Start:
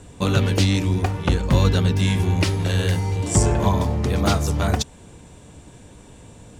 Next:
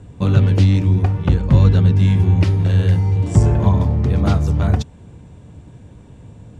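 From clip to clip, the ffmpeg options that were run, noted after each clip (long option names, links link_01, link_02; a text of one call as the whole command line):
ffmpeg -i in.wav -af "lowpass=frequency=2500:poles=1,equalizer=frequency=110:width=0.62:gain=10,volume=-2.5dB" out.wav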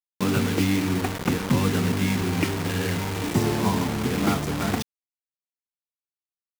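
ffmpeg -i in.wav -af "highpass=250,equalizer=frequency=250:width_type=q:width=4:gain=5,equalizer=frequency=590:width_type=q:width=4:gain=-9,equalizer=frequency=2200:width_type=q:width=4:gain=5,equalizer=frequency=3900:width_type=q:width=4:gain=-7,lowpass=frequency=5900:width=0.5412,lowpass=frequency=5900:width=1.3066,acrusher=bits=4:mix=0:aa=0.000001" out.wav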